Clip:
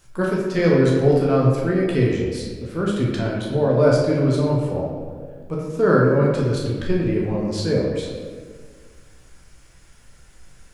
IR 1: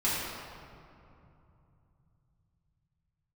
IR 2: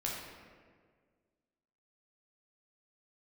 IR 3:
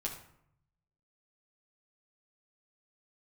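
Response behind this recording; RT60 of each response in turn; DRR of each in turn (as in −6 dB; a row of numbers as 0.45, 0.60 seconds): 2; 2.8, 1.8, 0.70 seconds; −10.5, −4.0, −2.5 decibels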